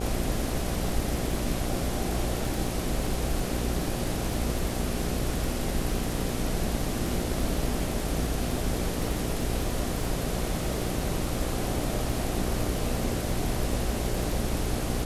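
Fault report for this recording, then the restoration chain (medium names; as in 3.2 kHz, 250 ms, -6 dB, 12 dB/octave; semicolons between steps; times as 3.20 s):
buzz 60 Hz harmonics 13 -33 dBFS
crackle 47 per s -35 dBFS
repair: de-click; de-hum 60 Hz, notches 13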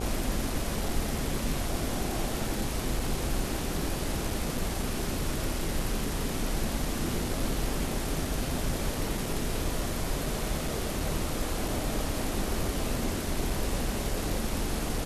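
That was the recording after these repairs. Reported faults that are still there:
nothing left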